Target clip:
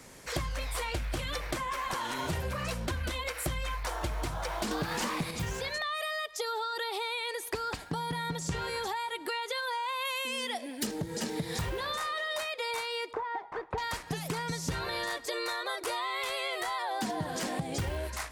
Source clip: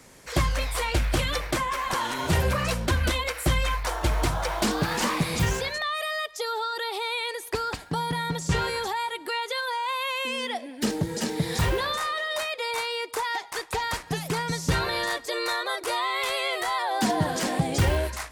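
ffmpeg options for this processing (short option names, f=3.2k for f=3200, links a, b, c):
-filter_complex "[0:a]asettb=1/sr,asplit=3[a][b][c];[a]atrim=end=4.714[d];[b]atrim=start=4.71:end=5.31,asetpts=PTS-STARTPTS,afade=t=in:d=0.004:c=qsin,afade=t=out:st=0.596:d=0.004:c=qsin,acontrast=83[e];[c]atrim=start=5.306[f];[d][e]acrossfade=d=0.004:c1=hsin:c2=qsin[g];[g][f]acrossfade=d=0.004:c1=qsin:c2=hsin,asettb=1/sr,asplit=3[h][i][j];[h]atrim=end=10.054[k];[i]atrim=start=10.05:end=10.87,asetpts=PTS-STARTPTS,afade=t=in:d=0.004:c=qsin,afade=t=out:st=0.816:d=0.004:c=qsin,aemphasis=mode=production:type=cd[l];[j]atrim=start=10.866[m];[k][l]acrossfade=d=0.004:c1=hsin:c2=qsin[n];[n][m]acrossfade=d=0.004:c1=qsin:c2=hsin,asettb=1/sr,asplit=3[o][p][q];[o]atrim=end=13.134[r];[p]atrim=start=13.13:end=13.78,asetpts=PTS-STARTPTS,afade=t=in:d=0.004:c=qsin,afade=t=out:st=0.646:d=0.004:c=qsin,lowpass=1.1k[s];[q]atrim=start=13.776[t];[r][s]acrossfade=d=0.004:c1=hsin:c2=qsin[u];[u][t]acrossfade=d=0.004:c1=qsin:c2=hsin,acompressor=threshold=-31dB:ratio=6"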